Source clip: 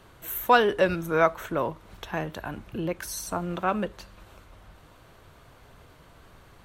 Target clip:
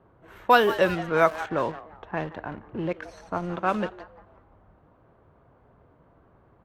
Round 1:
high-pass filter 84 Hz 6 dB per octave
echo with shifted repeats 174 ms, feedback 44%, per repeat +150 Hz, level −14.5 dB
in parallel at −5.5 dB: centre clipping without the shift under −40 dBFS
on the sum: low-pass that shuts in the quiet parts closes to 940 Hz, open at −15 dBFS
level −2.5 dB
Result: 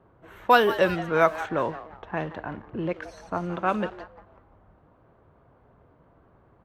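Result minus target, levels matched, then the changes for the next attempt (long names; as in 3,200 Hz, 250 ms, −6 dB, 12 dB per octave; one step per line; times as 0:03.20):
centre clipping without the shift: distortion −7 dB
change: centre clipping without the shift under −32.5 dBFS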